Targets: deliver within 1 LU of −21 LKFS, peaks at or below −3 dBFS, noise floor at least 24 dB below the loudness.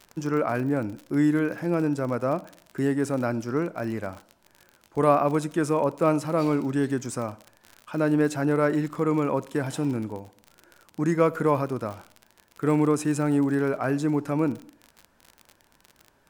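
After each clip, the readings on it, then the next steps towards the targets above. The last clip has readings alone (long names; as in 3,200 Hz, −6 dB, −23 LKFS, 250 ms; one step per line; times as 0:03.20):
crackle rate 47 per second; integrated loudness −25.5 LKFS; sample peak −6.5 dBFS; target loudness −21.0 LKFS
→ click removal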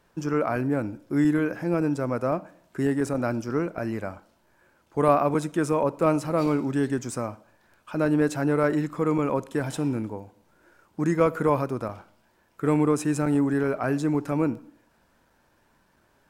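crackle rate 0.18 per second; integrated loudness −25.5 LKFS; sample peak −6.5 dBFS; target loudness −21.0 LKFS
→ level +4.5 dB
brickwall limiter −3 dBFS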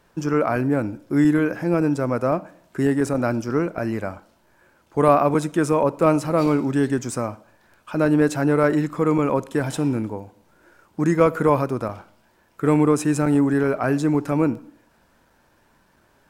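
integrated loudness −21.0 LKFS; sample peak −3.0 dBFS; background noise floor −61 dBFS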